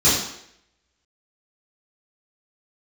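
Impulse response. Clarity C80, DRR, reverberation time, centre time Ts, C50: 5.5 dB, -12.5 dB, 0.70 s, 55 ms, 2.0 dB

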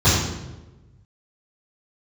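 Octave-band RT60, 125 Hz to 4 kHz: 1.8, 1.3, 1.3, 0.95, 0.85, 0.75 s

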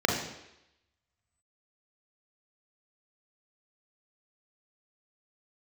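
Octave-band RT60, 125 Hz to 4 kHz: 0.70, 0.80, 0.85, 0.85, 0.90, 0.90 s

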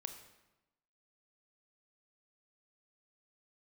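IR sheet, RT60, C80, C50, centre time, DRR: 1.0 s, 10.5 dB, 8.5 dB, 18 ms, 6.5 dB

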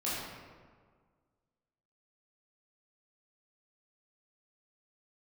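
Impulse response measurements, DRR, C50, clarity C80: -9.5 dB, -2.0 dB, 0.5 dB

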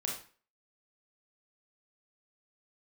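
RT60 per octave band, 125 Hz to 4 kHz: 0.40, 0.40, 0.40, 0.40, 0.40, 0.35 s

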